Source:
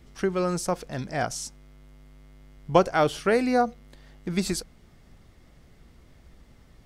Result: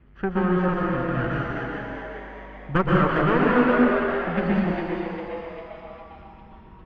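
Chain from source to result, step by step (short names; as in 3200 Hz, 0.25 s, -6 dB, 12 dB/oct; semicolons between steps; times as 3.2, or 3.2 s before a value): minimum comb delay 0.66 ms; LPF 2400 Hz 24 dB/oct; added harmonics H 7 -37 dB, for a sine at -8.5 dBFS; frequency-shifting echo 0.402 s, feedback 50%, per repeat +150 Hz, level -6 dB; plate-style reverb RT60 1.9 s, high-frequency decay 0.85×, pre-delay 0.11 s, DRR -3.5 dB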